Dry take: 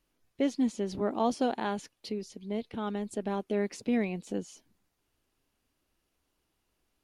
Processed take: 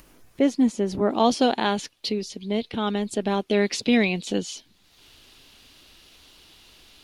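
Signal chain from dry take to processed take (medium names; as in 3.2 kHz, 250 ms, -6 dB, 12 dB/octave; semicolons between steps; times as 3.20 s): peaking EQ 3.7 kHz -3 dB 1.3 oct, from 1.10 s +8.5 dB, from 3.51 s +15 dB; upward compressor, threshold -48 dBFS; trim +8 dB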